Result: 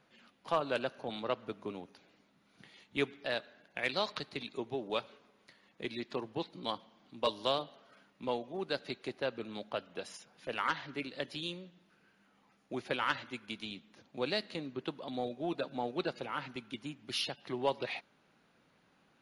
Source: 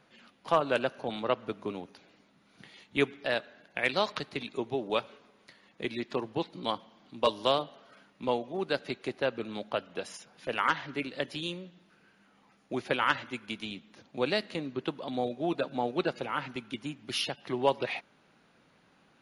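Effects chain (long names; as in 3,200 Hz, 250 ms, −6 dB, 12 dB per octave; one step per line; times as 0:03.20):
in parallel at −11.5 dB: soft clipping −25.5 dBFS, distortion −9 dB
on the sum: dynamic equaliser 4,200 Hz, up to +5 dB, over −50 dBFS, Q 2.6
level −7 dB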